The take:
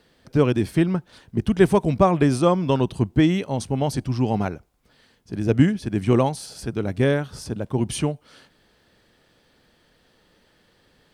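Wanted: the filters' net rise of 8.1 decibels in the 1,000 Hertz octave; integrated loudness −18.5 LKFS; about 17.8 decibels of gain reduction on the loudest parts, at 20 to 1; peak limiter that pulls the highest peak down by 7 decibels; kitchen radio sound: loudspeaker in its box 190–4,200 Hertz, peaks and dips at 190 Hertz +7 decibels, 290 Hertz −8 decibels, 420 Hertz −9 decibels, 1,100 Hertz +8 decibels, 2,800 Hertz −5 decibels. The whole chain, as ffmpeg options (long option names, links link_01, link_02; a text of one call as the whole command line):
ffmpeg -i in.wav -af "equalizer=frequency=1000:width_type=o:gain=5,acompressor=threshold=-27dB:ratio=20,alimiter=level_in=1.5dB:limit=-24dB:level=0:latency=1,volume=-1.5dB,highpass=190,equalizer=frequency=190:width_type=q:width=4:gain=7,equalizer=frequency=290:width_type=q:width=4:gain=-8,equalizer=frequency=420:width_type=q:width=4:gain=-9,equalizer=frequency=1100:width_type=q:width=4:gain=8,equalizer=frequency=2800:width_type=q:width=4:gain=-5,lowpass=frequency=4200:width=0.5412,lowpass=frequency=4200:width=1.3066,volume=19.5dB" out.wav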